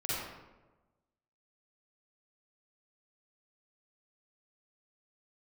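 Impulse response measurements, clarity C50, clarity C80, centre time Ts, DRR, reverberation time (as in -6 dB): -5.5 dB, -0.5 dB, 0.103 s, -9.5 dB, 1.2 s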